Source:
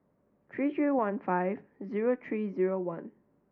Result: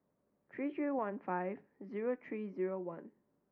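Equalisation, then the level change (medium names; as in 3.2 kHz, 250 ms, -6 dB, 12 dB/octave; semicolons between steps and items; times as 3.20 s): bass shelf 180 Hz -4 dB; -7.5 dB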